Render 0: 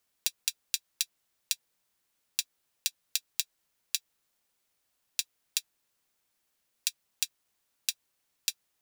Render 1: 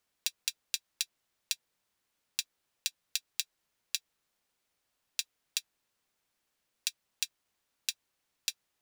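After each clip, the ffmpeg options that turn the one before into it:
-af "highshelf=f=7k:g=-7"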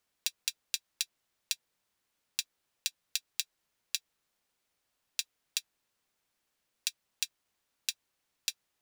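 -af anull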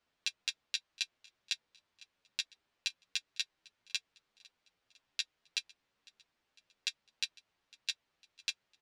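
-filter_complex "[0:a]lowpass=4.1k,aecho=1:1:503|1006|1509:0.0631|0.0341|0.0184,asplit=2[a][b];[b]adelay=9.7,afreqshift=1.1[c];[a][c]amix=inputs=2:normalize=1,volume=5.5dB"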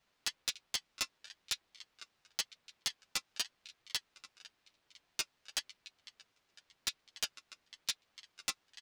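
-filter_complex "[0:a]aecho=1:1:292:0.0708,acrossover=split=390|660|4300[a][b][c][d];[c]aeval=exprs='0.015*(abs(mod(val(0)/0.015+3,4)-2)-1)':c=same[e];[a][b][e][d]amix=inputs=4:normalize=0,aeval=exprs='val(0)*sin(2*PI*740*n/s+740*0.8/0.94*sin(2*PI*0.94*n/s))':c=same,volume=7.5dB"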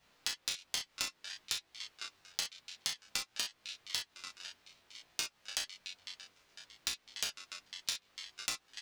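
-filter_complex "[0:a]asplit=2[a][b];[b]adelay=33,volume=-3.5dB[c];[a][c]amix=inputs=2:normalize=0,flanger=delay=18:depth=4:speed=0.58,acompressor=threshold=-44dB:ratio=6,volume=10.5dB"

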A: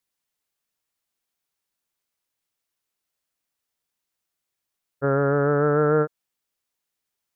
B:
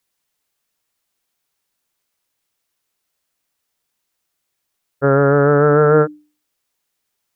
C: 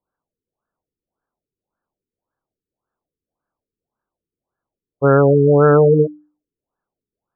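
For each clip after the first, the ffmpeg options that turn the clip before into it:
-af "bandreject=f=60:t=h:w=6,bandreject=f=120:t=h:w=6,bandreject=f=180:t=h:w=6,bandreject=f=240:t=h:w=6,bandreject=f=300:t=h:w=6,volume=8dB"
-af "afftfilt=real='re*lt(b*sr/1024,460*pow(1800/460,0.5+0.5*sin(2*PI*1.8*pts/sr)))':imag='im*lt(b*sr/1024,460*pow(1800/460,0.5+0.5*sin(2*PI*1.8*pts/sr)))':win_size=1024:overlap=0.75,volume=1.5dB"

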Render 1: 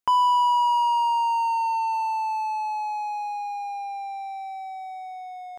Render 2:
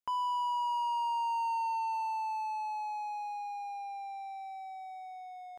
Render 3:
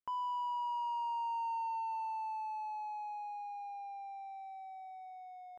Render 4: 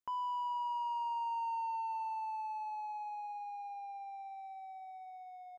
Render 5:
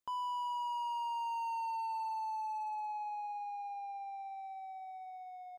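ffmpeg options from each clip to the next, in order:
-af "alimiter=limit=-19dB:level=0:latency=1,volume=-8.5dB"
-af "highshelf=f=3k:g=-12,volume=-3.5dB"
-filter_complex "[0:a]asplit=2[a][b];[b]adelay=355.7,volume=-23dB,highshelf=f=4k:g=-8[c];[a][c]amix=inputs=2:normalize=0"
-af "asoftclip=type=hard:threshold=-37.5dB,volume=2dB"

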